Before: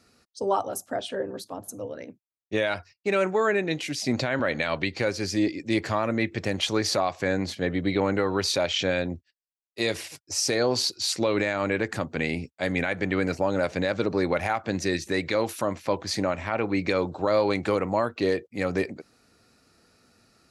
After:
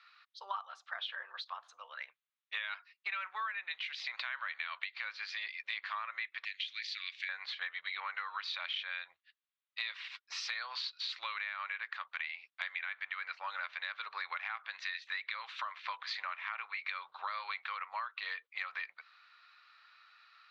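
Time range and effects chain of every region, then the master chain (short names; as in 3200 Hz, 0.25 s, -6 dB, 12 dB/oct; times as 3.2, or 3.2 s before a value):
6.45–7.29 steep high-pass 2000 Hz + high shelf 6600 Hz +9 dB + compressor 5:1, threshold -26 dBFS
whole clip: elliptic band-pass 1100–3800 Hz, stop band 60 dB; compressor 6:1, threshold -43 dBFS; gain +6 dB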